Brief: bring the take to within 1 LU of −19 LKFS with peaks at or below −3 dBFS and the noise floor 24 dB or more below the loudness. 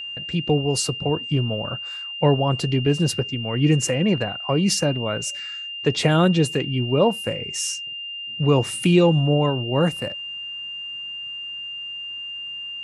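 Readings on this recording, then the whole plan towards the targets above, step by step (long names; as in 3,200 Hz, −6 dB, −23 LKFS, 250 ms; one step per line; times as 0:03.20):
interfering tone 2,800 Hz; level of the tone −30 dBFS; integrated loudness −22.5 LKFS; sample peak −4.0 dBFS; target loudness −19.0 LKFS
→ notch filter 2,800 Hz, Q 30
level +3.5 dB
brickwall limiter −3 dBFS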